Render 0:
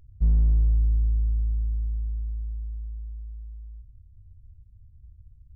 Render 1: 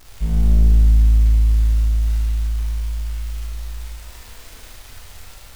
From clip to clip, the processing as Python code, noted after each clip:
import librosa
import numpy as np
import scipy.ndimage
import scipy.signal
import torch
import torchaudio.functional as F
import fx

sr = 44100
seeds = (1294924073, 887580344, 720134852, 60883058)

y = fx.peak_eq(x, sr, hz=88.0, db=-10.5, octaves=1.9)
y = fx.dmg_crackle(y, sr, seeds[0], per_s=490.0, level_db=-41.0)
y = fx.rev_schroeder(y, sr, rt60_s=1.6, comb_ms=25, drr_db=-5.5)
y = y * 10.0 ** (7.0 / 20.0)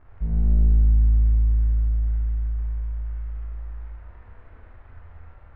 y = fx.dynamic_eq(x, sr, hz=1100.0, q=1.1, threshold_db=-48.0, ratio=4.0, max_db=-5)
y = scipy.signal.sosfilt(scipy.signal.butter(4, 1700.0, 'lowpass', fs=sr, output='sos'), y)
y = fx.peak_eq(y, sr, hz=84.0, db=8.5, octaves=0.56)
y = y * 10.0 ** (-6.0 / 20.0)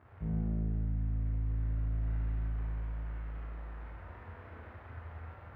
y = scipy.signal.sosfilt(scipy.signal.butter(4, 79.0, 'highpass', fs=sr, output='sos'), x)
y = fx.rider(y, sr, range_db=5, speed_s=0.5)
y = y * 10.0 ** (-1.5 / 20.0)